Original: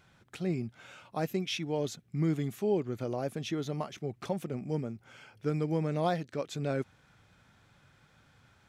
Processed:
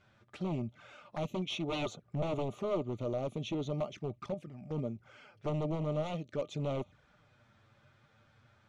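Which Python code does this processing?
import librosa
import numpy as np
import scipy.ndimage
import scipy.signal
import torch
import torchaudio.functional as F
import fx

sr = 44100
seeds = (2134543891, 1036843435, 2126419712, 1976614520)

y = fx.band_shelf(x, sr, hz=780.0, db=10.5, octaves=2.3, at=(1.51, 2.62))
y = fx.level_steps(y, sr, step_db=11, at=(4.17, 4.78))
y = 10.0 ** (-28.0 / 20.0) * (np.abs((y / 10.0 ** (-28.0 / 20.0) + 3.0) % 4.0 - 2.0) - 1.0)
y = fx.env_flanger(y, sr, rest_ms=11.3, full_db=-35.5)
y = fx.air_absorb(y, sr, metres=80.0)
y = fx.small_body(y, sr, hz=(600.0, 1200.0), ring_ms=95, db=11)
y = fx.upward_expand(y, sr, threshold_db=-38.0, expansion=1.5, at=(5.75, 6.26))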